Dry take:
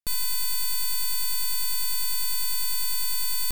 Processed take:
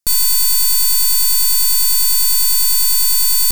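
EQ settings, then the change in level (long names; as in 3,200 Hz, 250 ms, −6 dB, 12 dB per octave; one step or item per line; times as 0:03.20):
high shelf with overshoot 4,200 Hz +6 dB, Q 1.5
+8.5 dB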